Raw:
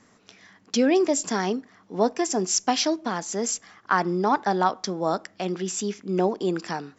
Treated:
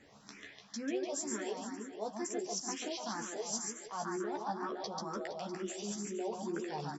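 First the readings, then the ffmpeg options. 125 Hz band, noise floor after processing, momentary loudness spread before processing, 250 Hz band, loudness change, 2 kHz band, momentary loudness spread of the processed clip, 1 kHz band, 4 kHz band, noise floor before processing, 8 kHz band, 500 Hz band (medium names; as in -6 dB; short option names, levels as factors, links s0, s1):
-15.0 dB, -59 dBFS, 8 LU, -14.0 dB, -14.0 dB, -14.5 dB, 5 LU, -15.0 dB, -13.0 dB, -59 dBFS, no reading, -14.0 dB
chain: -filter_complex "[0:a]areverse,acompressor=threshold=0.0141:ratio=5,areverse,asplit=2[s0][s1];[s1]adelay=14,volume=0.631[s2];[s0][s2]amix=inputs=2:normalize=0,aecho=1:1:140|294|463.4|649.7|854.7:0.631|0.398|0.251|0.158|0.1,asplit=2[s3][s4];[s4]afreqshift=2.1[s5];[s3][s5]amix=inputs=2:normalize=1"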